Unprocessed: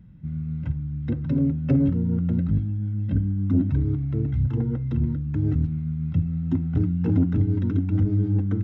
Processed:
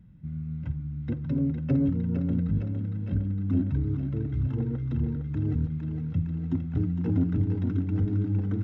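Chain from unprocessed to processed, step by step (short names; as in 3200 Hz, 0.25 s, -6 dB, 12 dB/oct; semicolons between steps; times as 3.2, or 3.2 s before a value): thinning echo 0.459 s, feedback 77%, high-pass 340 Hz, level -6 dB; gain -4.5 dB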